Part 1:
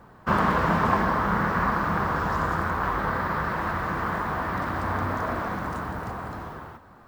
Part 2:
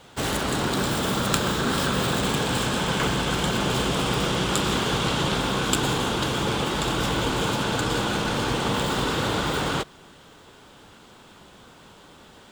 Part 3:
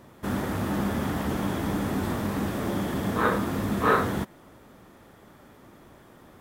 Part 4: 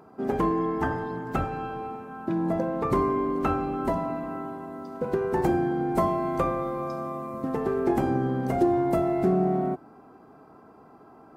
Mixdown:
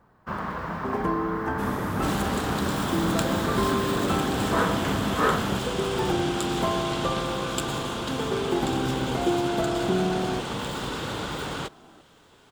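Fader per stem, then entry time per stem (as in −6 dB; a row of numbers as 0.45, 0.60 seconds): −9.5, −6.5, −1.5, −2.5 decibels; 0.00, 1.85, 1.35, 0.65 seconds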